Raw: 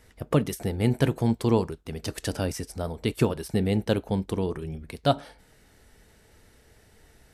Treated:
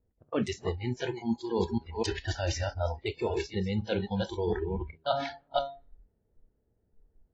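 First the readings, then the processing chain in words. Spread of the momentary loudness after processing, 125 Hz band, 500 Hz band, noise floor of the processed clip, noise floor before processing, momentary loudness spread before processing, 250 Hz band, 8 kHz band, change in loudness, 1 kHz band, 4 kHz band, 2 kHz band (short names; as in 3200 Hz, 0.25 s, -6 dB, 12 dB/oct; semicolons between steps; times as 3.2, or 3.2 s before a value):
3 LU, -7.0 dB, -3.0 dB, -74 dBFS, -59 dBFS, 10 LU, -6.5 dB, -5.0 dB, -5.0 dB, -1.5 dB, -1.5 dB, -1.0 dB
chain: reverse delay 0.254 s, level -6.5 dB; low-pass opened by the level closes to 460 Hz, open at -22 dBFS; de-hum 138.8 Hz, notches 32; reverse; compressor 10:1, threshold -32 dBFS, peak gain reduction 17.5 dB; reverse; spectral noise reduction 24 dB; de-esser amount 90%; gain +8.5 dB; AAC 24 kbps 32000 Hz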